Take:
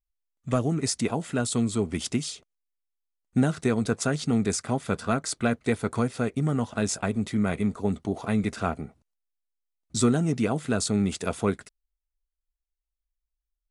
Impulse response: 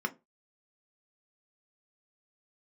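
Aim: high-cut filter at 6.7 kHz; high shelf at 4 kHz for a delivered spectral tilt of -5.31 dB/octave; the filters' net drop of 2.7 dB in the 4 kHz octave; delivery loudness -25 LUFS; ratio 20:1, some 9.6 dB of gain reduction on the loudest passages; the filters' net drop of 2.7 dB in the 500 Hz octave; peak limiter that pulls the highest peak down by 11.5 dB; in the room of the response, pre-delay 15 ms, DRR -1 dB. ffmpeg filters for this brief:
-filter_complex "[0:a]lowpass=6700,equalizer=f=500:t=o:g=-3.5,highshelf=f=4000:g=3.5,equalizer=f=4000:t=o:g=-5,acompressor=threshold=0.0501:ratio=20,alimiter=level_in=1.12:limit=0.0631:level=0:latency=1,volume=0.891,asplit=2[s0][s1];[1:a]atrim=start_sample=2205,adelay=15[s2];[s1][s2]afir=irnorm=-1:irlink=0,volume=0.596[s3];[s0][s3]amix=inputs=2:normalize=0,volume=2.24"

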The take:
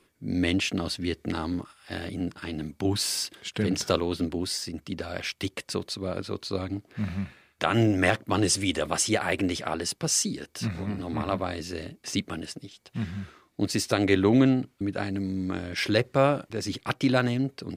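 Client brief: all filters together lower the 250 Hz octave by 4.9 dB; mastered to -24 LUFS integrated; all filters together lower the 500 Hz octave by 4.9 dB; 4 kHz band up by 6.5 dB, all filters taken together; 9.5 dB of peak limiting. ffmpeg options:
-af "equalizer=f=250:t=o:g=-4.5,equalizer=f=500:t=o:g=-5,equalizer=f=4000:t=o:g=8.5,volume=1.88,alimiter=limit=0.335:level=0:latency=1"

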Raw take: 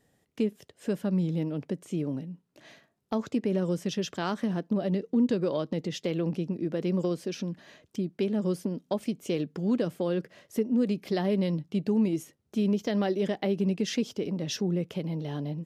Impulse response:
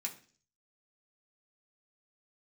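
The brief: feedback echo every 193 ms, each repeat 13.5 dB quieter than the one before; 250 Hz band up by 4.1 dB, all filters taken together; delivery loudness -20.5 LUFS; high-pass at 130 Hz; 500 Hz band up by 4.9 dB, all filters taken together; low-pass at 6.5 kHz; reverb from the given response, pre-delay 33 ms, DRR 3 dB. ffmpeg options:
-filter_complex "[0:a]highpass=130,lowpass=6500,equalizer=f=250:t=o:g=5,equalizer=f=500:t=o:g=4.5,aecho=1:1:193|386:0.211|0.0444,asplit=2[s0][s1];[1:a]atrim=start_sample=2205,adelay=33[s2];[s1][s2]afir=irnorm=-1:irlink=0,volume=0.75[s3];[s0][s3]amix=inputs=2:normalize=0,volume=1.5"

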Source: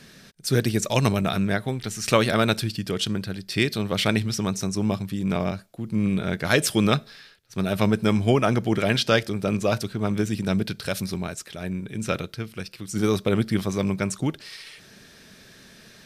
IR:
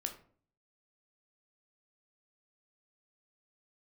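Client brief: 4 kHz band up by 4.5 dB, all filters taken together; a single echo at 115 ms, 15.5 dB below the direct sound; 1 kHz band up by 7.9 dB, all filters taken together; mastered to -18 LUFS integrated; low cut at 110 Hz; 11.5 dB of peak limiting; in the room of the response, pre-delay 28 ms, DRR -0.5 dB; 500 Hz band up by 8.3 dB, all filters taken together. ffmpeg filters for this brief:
-filter_complex "[0:a]highpass=110,equalizer=f=500:t=o:g=8,equalizer=f=1000:t=o:g=8,equalizer=f=4000:t=o:g=5,alimiter=limit=0.398:level=0:latency=1,aecho=1:1:115:0.168,asplit=2[s0][s1];[1:a]atrim=start_sample=2205,adelay=28[s2];[s1][s2]afir=irnorm=-1:irlink=0,volume=1.12[s3];[s0][s3]amix=inputs=2:normalize=0,volume=1.19"

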